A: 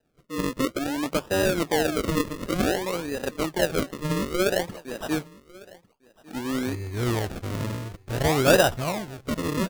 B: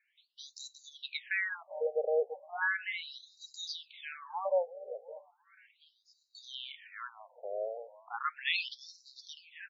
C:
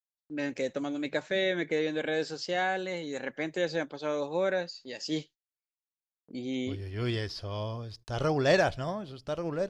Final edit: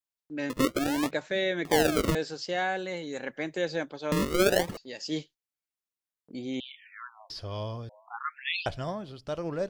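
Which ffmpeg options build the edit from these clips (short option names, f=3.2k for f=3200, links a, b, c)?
-filter_complex "[0:a]asplit=3[a][b][c];[1:a]asplit=2[d][e];[2:a]asplit=6[f][g][h][i][j][k];[f]atrim=end=0.502[l];[a]atrim=start=0.498:end=1.112[m];[g]atrim=start=1.108:end=1.652[n];[b]atrim=start=1.648:end=2.152[o];[h]atrim=start=2.148:end=4.122[p];[c]atrim=start=4.118:end=4.772[q];[i]atrim=start=4.768:end=6.602[r];[d]atrim=start=6.598:end=7.302[s];[j]atrim=start=7.298:end=7.892[t];[e]atrim=start=7.888:end=8.662[u];[k]atrim=start=8.658[v];[l][m]acrossfade=d=0.004:c1=hsin:c2=hsin[w];[w][n]acrossfade=d=0.004:c1=hsin:c2=hsin[x];[x][o]acrossfade=d=0.004:c1=hsin:c2=hsin[y];[y][p]acrossfade=d=0.004:c1=hsin:c2=hsin[z];[z][q]acrossfade=d=0.004:c1=hsin:c2=hsin[aa];[aa][r]acrossfade=d=0.004:c1=hsin:c2=hsin[ab];[ab][s]acrossfade=d=0.004:c1=hsin:c2=hsin[ac];[ac][t]acrossfade=d=0.004:c1=hsin:c2=hsin[ad];[ad][u]acrossfade=d=0.004:c1=hsin:c2=hsin[ae];[ae][v]acrossfade=d=0.004:c1=hsin:c2=hsin"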